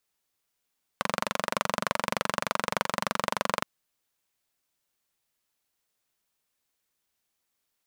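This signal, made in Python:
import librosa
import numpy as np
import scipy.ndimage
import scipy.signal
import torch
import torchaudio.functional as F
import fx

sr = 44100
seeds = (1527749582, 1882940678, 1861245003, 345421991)

y = fx.engine_single(sr, seeds[0], length_s=2.62, rpm=2800, resonances_hz=(210.0, 590.0, 1000.0))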